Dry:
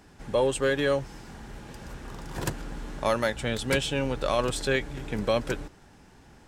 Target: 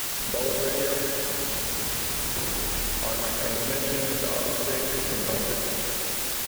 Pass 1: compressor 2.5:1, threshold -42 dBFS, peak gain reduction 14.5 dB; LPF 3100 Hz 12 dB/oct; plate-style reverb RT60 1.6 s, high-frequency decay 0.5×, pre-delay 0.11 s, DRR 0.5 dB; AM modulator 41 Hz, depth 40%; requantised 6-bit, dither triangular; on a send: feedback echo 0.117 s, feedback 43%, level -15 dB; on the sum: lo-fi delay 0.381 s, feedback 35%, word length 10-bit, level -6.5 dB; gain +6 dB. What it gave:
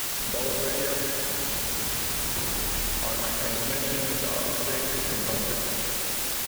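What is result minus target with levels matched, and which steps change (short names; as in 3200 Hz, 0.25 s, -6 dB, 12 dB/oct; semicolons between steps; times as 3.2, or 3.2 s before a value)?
500 Hz band -2.5 dB
add after LPF: dynamic EQ 440 Hz, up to +4 dB, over -51 dBFS, Q 1.4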